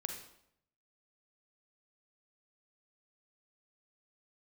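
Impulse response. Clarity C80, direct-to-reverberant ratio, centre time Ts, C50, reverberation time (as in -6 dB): 8.5 dB, 3.5 dB, 27 ms, 5.0 dB, 0.75 s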